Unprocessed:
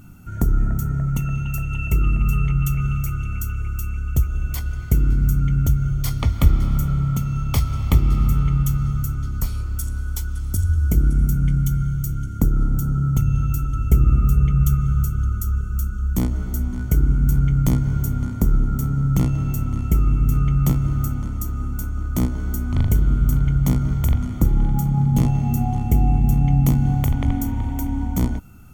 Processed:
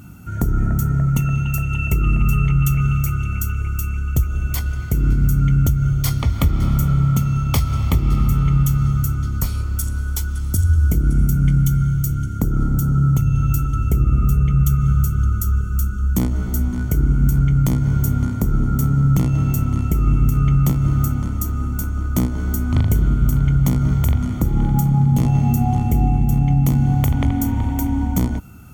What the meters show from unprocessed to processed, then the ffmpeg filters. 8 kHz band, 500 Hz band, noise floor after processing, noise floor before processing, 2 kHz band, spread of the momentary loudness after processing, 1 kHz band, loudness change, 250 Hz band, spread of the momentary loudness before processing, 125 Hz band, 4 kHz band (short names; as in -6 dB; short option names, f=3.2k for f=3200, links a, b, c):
+3.5 dB, +2.5 dB, -24 dBFS, -27 dBFS, +4.0 dB, 6 LU, +4.0 dB, +2.5 dB, +3.0 dB, 8 LU, +3.0 dB, n/a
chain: -af "highpass=52,alimiter=limit=-12dB:level=0:latency=1:release=157,volume=5dB"